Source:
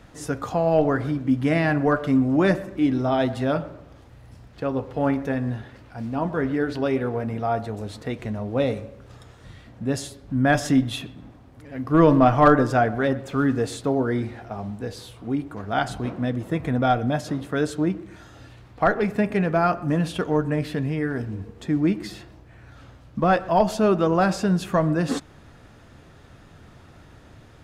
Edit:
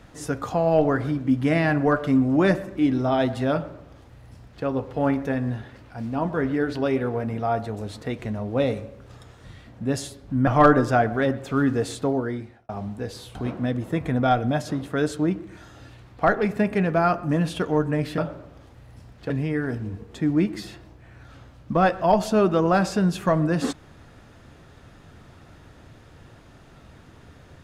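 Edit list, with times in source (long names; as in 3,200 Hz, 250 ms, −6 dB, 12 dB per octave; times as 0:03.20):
0:03.53–0:04.65: duplicate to 0:20.77
0:10.47–0:12.29: remove
0:13.85–0:14.51: fade out
0:15.17–0:15.94: remove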